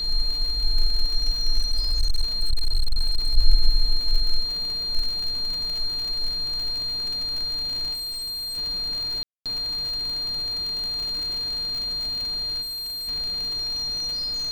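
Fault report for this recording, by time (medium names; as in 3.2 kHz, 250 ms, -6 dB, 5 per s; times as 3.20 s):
crackle 66 per s -27 dBFS
whine 4.2 kHz -25 dBFS
1.58–3.38 s: clipped -15.5 dBFS
7.93–8.58 s: clipped -29 dBFS
9.23–9.46 s: dropout 227 ms
12.61–13.09 s: clipped -30 dBFS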